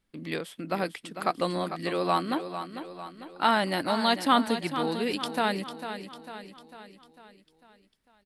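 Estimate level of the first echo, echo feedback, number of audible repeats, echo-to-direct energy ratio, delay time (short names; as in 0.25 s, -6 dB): -10.0 dB, 53%, 5, -8.5 dB, 0.449 s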